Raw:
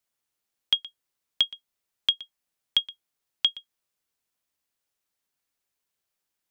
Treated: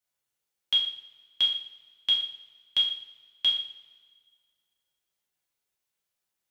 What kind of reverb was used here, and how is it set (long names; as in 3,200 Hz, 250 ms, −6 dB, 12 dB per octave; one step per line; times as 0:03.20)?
coupled-rooms reverb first 0.53 s, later 1.8 s, from −18 dB, DRR −4.5 dB
level −7 dB